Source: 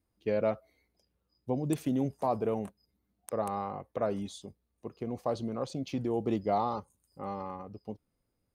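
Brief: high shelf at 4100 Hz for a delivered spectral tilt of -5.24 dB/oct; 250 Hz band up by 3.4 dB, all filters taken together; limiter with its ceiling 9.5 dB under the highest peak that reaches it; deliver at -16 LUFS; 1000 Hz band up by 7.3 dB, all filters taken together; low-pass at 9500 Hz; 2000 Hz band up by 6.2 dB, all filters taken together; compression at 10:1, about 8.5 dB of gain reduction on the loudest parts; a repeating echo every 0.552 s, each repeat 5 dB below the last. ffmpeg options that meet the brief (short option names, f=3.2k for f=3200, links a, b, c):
-af "lowpass=9.5k,equalizer=f=250:t=o:g=3.5,equalizer=f=1k:t=o:g=9,equalizer=f=2k:t=o:g=6.5,highshelf=f=4.1k:g=-7,acompressor=threshold=-27dB:ratio=10,alimiter=level_in=0.5dB:limit=-24dB:level=0:latency=1,volume=-0.5dB,aecho=1:1:552|1104|1656|2208|2760|3312|3864:0.562|0.315|0.176|0.0988|0.0553|0.031|0.0173,volume=20dB"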